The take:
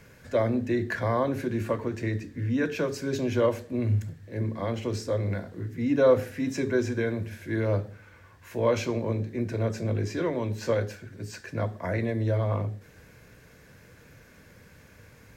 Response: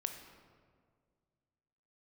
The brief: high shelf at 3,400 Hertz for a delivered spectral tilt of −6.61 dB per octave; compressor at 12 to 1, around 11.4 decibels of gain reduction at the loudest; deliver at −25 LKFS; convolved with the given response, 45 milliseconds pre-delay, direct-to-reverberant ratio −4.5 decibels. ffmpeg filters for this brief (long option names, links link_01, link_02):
-filter_complex "[0:a]highshelf=frequency=3400:gain=-8.5,acompressor=threshold=-27dB:ratio=12,asplit=2[link_01][link_02];[1:a]atrim=start_sample=2205,adelay=45[link_03];[link_02][link_03]afir=irnorm=-1:irlink=0,volume=4.5dB[link_04];[link_01][link_04]amix=inputs=2:normalize=0,volume=2.5dB"